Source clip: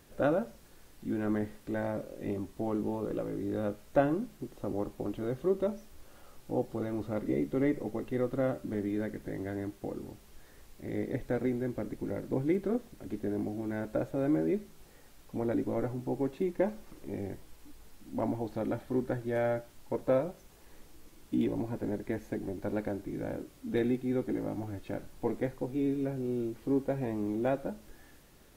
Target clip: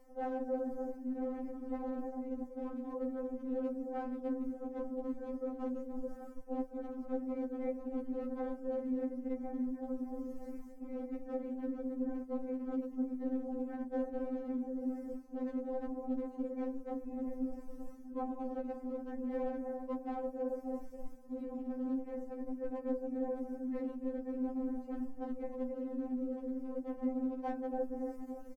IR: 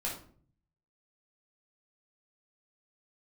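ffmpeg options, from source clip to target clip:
-filter_complex "[0:a]firequalizer=gain_entry='entry(430,0);entry(3200,-28);entry(4800,-13)':delay=0.05:min_phase=1,asplit=2[a][b];[b]adelay=290,lowpass=f=1.1k:p=1,volume=-7dB,asplit=2[c][d];[d]adelay=290,lowpass=f=1.1k:p=1,volume=0.36,asplit=2[e][f];[f]adelay=290,lowpass=f=1.1k:p=1,volume=0.36,asplit=2[g][h];[h]adelay=290,lowpass=f=1.1k:p=1,volume=0.36[i];[a][c][e][g][i]amix=inputs=5:normalize=0,afftfilt=real='hypot(re,im)*cos(2*PI*random(0))':imag='hypot(re,im)*sin(2*PI*random(1))':win_size=512:overlap=0.75,acrossover=split=180|3000[j][k][l];[j]acompressor=threshold=-44dB:ratio=10[m];[m][k][l]amix=inputs=3:normalize=0,asetrate=49501,aresample=44100,atempo=0.890899,afftfilt=real='re*lt(hypot(re,im),0.126)':imag='im*lt(hypot(re,im),0.126)':win_size=1024:overlap=0.75,afreqshift=-41,aeval=exprs='clip(val(0),-1,0.02)':c=same,highshelf=f=6.7k:g=-4.5,areverse,acompressor=threshold=-51dB:ratio=5,areverse,afftfilt=real='re*3.46*eq(mod(b,12),0)':imag='im*3.46*eq(mod(b,12),0)':win_size=2048:overlap=0.75,volume=16.5dB"

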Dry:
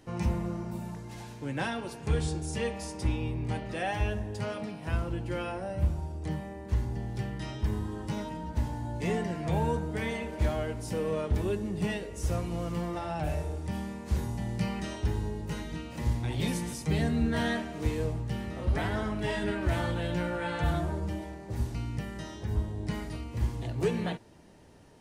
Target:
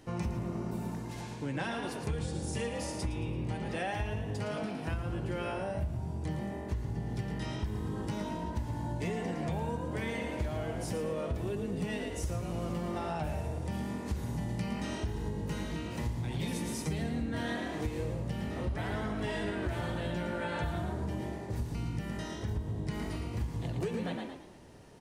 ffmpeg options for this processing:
-filter_complex "[0:a]asplit=5[a][b][c][d][e];[b]adelay=112,afreqshift=46,volume=-7dB[f];[c]adelay=224,afreqshift=92,volume=-15.6dB[g];[d]adelay=336,afreqshift=138,volume=-24.3dB[h];[e]adelay=448,afreqshift=184,volume=-32.9dB[i];[a][f][g][h][i]amix=inputs=5:normalize=0,acompressor=threshold=-32dB:ratio=6,asettb=1/sr,asplit=3[j][k][l];[j]atrim=end=1.214[m];[k]atrim=start=1.21:end=1.71,asetpts=PTS-STARTPTS,afade=t=in:d=0.004:c=qsin,afade=t=out:st=0.496:d=0.004:c=qsin,lowpass=10k[n];[l]atrim=start=1.706[o];[m][n]acrossfade=d=0.004:c1=hsin:c2=qsin[p];[p][o]acrossfade=d=0.004:c1=qsin:c2=hsin,volume=1dB"

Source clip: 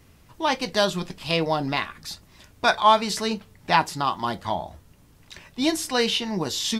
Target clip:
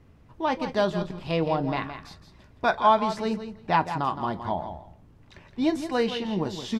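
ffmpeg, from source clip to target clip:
-filter_complex "[0:a]lowpass=f=1k:p=1,asplit=2[a][b];[b]aecho=0:1:167|334:0.316|0.0506[c];[a][c]amix=inputs=2:normalize=0"

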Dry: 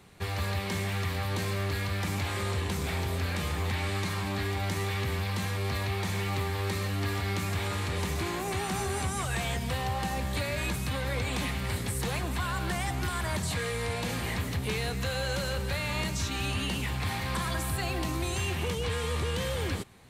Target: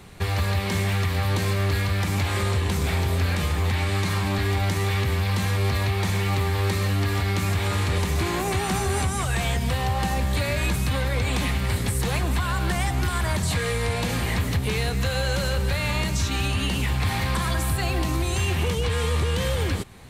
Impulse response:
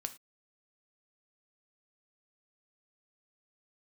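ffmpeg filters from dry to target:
-af "lowshelf=f=66:g=9,alimiter=limit=-23.5dB:level=0:latency=1:release=276,volume=8.5dB"

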